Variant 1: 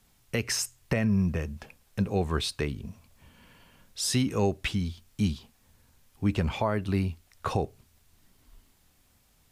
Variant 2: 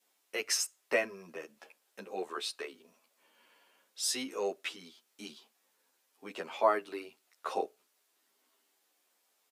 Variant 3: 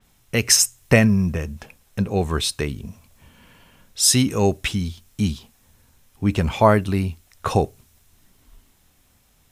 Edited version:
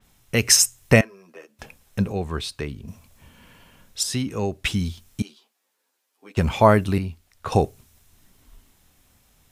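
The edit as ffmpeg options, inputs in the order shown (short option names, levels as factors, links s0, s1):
-filter_complex "[1:a]asplit=2[s0][s1];[0:a]asplit=3[s2][s3][s4];[2:a]asplit=6[s5][s6][s7][s8][s9][s10];[s5]atrim=end=1.012[s11];[s0]atrim=start=1.008:end=1.592[s12];[s6]atrim=start=1.588:end=2.122[s13];[s2]atrim=start=2.118:end=2.882[s14];[s7]atrim=start=2.878:end=4.032[s15];[s3]atrim=start=4.028:end=4.652[s16];[s8]atrim=start=4.648:end=5.222[s17];[s1]atrim=start=5.218:end=6.372[s18];[s9]atrim=start=6.368:end=6.982[s19];[s4]atrim=start=6.978:end=7.522[s20];[s10]atrim=start=7.518[s21];[s11][s12]acrossfade=d=0.004:c1=hsin:c2=hsin[s22];[s22][s13]acrossfade=d=0.004:c1=hsin:c2=hsin[s23];[s23][s14]acrossfade=d=0.004:c1=hsin:c2=hsin[s24];[s24][s15]acrossfade=d=0.004:c1=hsin:c2=hsin[s25];[s25][s16]acrossfade=d=0.004:c1=hsin:c2=hsin[s26];[s26][s17]acrossfade=d=0.004:c1=hsin:c2=hsin[s27];[s27][s18]acrossfade=d=0.004:c1=hsin:c2=hsin[s28];[s28][s19]acrossfade=d=0.004:c1=hsin:c2=hsin[s29];[s29][s20]acrossfade=d=0.004:c1=hsin:c2=hsin[s30];[s30][s21]acrossfade=d=0.004:c1=hsin:c2=hsin"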